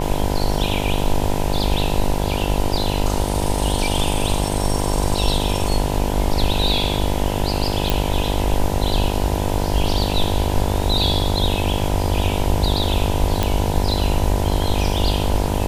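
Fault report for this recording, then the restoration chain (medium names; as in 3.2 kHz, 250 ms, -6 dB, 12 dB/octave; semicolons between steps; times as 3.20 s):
buzz 50 Hz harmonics 20 -23 dBFS
7.90 s: pop
13.43 s: pop -4 dBFS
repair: de-click; de-hum 50 Hz, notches 20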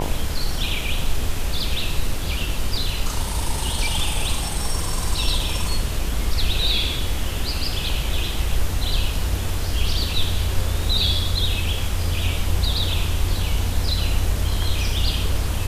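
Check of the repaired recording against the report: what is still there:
nothing left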